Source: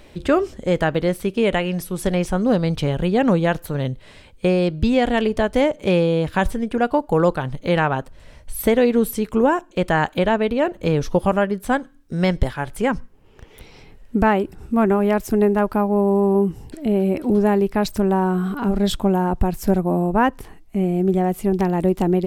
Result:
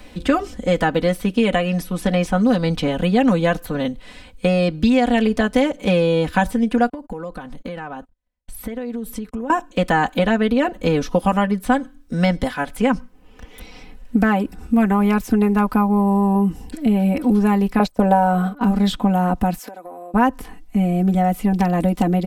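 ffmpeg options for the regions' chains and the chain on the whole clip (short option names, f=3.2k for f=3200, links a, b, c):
-filter_complex "[0:a]asettb=1/sr,asplit=3[a][b][c];[a]atrim=end=6.894[d];[b]atrim=start=6.89:end=9.5,asetpts=PTS-STARTPTS,afade=t=in:d=0.004:c=qsin,afade=t=out:st=2.606:d=0.004:c=qsin,agate=range=-44dB:threshold=-35dB:ratio=16:release=100:detection=peak,equalizer=f=3.2k:w=0.49:g=-3,acompressor=threshold=-29dB:ratio=10:attack=3.2:release=140:knee=1:detection=peak[e];[c]atrim=start=9.496[f];[d][e]acrossfade=d=0.004:c1=hsin:c2=qsin[g];[g][f]acrossfade=d=0.004:c1=qsin:c2=hsin,asettb=1/sr,asplit=3[h][i][j];[h]atrim=end=17.794[k];[i]atrim=start=17.79:end=18.61,asetpts=PTS-STARTPTS,afade=t=in:d=0.004:c=qsin,afade=t=out:st=0.816:d=0.004:c=qsin,agate=range=-22dB:threshold=-23dB:ratio=16:release=100:detection=peak,equalizer=f=590:t=o:w=1.1:g=14[l];[j]atrim=start=18.606[m];[k][l]acrossfade=d=0.004:c1=hsin:c2=qsin[n];[n][m]acrossfade=d=0.004:c1=qsin:c2=hsin,asettb=1/sr,asplit=3[o][p][q];[o]atrim=end=19.584[r];[p]atrim=start=19.58:end=20.14,asetpts=PTS-STARTPTS,afade=t=in:d=0.004:c=qsin,afade=t=out:st=0.556:d=0.004:c=qsin,highpass=f=360:w=0.5412,highpass=f=360:w=1.3066,acompressor=threshold=-32dB:ratio=16:attack=3.2:release=140:knee=1:detection=peak[s];[q]atrim=start=20.136[t];[r][s]acrossfade=d=0.004:c1=hsin:c2=qsin[u];[u][t]acrossfade=d=0.004:c1=qsin:c2=hsin,equalizer=f=470:t=o:w=0.4:g=-4,aecho=1:1:4:0.88,acrossover=split=92|1400|4300[v][w][x][y];[v]acompressor=threshold=-35dB:ratio=4[z];[w]acompressor=threshold=-15dB:ratio=4[aa];[x]acompressor=threshold=-29dB:ratio=4[ab];[y]acompressor=threshold=-40dB:ratio=4[ac];[z][aa][ab][ac]amix=inputs=4:normalize=0,volume=2dB"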